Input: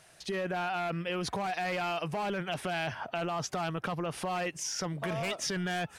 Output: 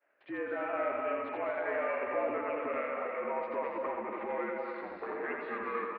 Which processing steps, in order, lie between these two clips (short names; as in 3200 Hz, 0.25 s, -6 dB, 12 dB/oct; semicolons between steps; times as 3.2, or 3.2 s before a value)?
gliding pitch shift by -5.5 st starting unshifted; expander -49 dBFS; reverse; upward compressor, threshold -40 dBFS; reverse; limiter -28 dBFS, peak gain reduction 6 dB; echo 84 ms -4 dB; on a send at -2 dB: reverb RT60 1.3 s, pre-delay 0.171 s; on the sum: mistuned SSB -61 Hz 360–2300 Hz; ending taper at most 110 dB/s